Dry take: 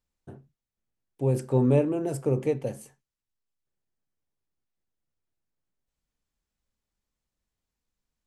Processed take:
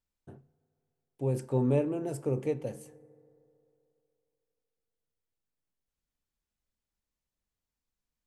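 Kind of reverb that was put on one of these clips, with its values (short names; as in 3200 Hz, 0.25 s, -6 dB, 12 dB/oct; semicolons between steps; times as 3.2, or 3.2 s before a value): FDN reverb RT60 2.9 s, low-frequency decay 0.75×, high-frequency decay 0.3×, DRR 19.5 dB; gain -5 dB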